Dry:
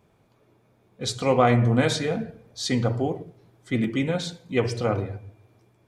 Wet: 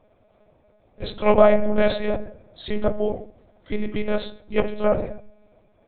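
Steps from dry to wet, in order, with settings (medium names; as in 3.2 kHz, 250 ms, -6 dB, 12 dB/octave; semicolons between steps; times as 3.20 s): peaking EQ 610 Hz +13.5 dB 0.38 oct; monotone LPC vocoder at 8 kHz 210 Hz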